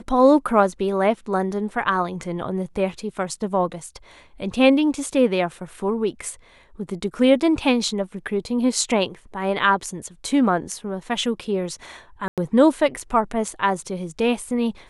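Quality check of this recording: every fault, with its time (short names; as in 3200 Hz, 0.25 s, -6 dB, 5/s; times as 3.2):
12.28–12.38 gap 97 ms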